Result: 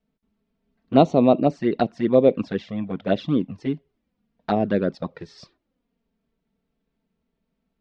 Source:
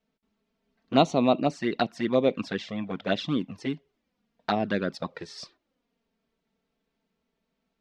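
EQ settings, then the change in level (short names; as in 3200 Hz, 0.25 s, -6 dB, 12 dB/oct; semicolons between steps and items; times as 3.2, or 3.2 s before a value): dynamic EQ 500 Hz, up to +8 dB, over -36 dBFS, Q 0.95; air absorption 77 m; low shelf 270 Hz +11 dB; -2.5 dB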